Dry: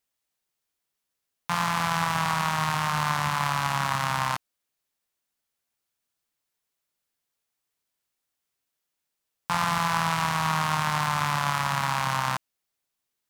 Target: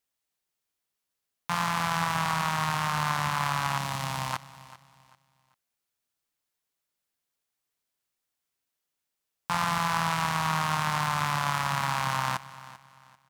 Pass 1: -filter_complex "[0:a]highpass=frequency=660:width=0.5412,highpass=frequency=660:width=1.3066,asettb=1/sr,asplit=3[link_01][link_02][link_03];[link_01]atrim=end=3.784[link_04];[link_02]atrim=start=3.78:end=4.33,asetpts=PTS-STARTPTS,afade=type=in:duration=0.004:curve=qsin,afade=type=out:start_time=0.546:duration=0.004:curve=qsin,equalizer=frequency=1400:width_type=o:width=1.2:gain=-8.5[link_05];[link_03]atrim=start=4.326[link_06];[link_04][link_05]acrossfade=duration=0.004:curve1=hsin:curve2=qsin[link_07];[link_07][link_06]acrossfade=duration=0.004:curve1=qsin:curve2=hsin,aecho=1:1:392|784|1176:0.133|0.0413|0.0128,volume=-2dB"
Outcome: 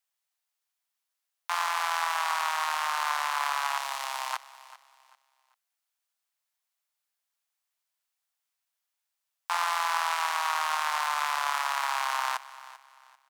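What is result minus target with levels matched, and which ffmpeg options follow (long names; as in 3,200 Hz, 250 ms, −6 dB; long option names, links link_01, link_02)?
500 Hz band −3.0 dB
-filter_complex "[0:a]asettb=1/sr,asplit=3[link_01][link_02][link_03];[link_01]atrim=end=3.784[link_04];[link_02]atrim=start=3.78:end=4.33,asetpts=PTS-STARTPTS,afade=type=in:duration=0.004:curve=qsin,afade=type=out:start_time=0.546:duration=0.004:curve=qsin,equalizer=frequency=1400:width_type=o:width=1.2:gain=-8.5[link_05];[link_03]atrim=start=4.326[link_06];[link_04][link_05]acrossfade=duration=0.004:curve1=hsin:curve2=qsin[link_07];[link_07][link_06]acrossfade=duration=0.004:curve1=qsin:curve2=hsin,aecho=1:1:392|784|1176:0.133|0.0413|0.0128,volume=-2dB"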